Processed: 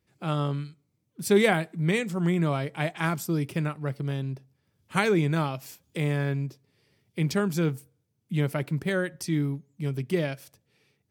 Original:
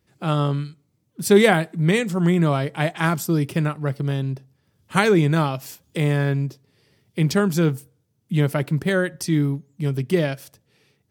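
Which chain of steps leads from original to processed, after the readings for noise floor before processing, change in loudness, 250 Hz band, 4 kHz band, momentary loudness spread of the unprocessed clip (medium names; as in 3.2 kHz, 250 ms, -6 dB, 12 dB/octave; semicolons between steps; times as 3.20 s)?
-69 dBFS, -6.5 dB, -6.5 dB, -6.5 dB, 12 LU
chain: peaking EQ 2.3 kHz +4 dB 0.21 oct; trim -6.5 dB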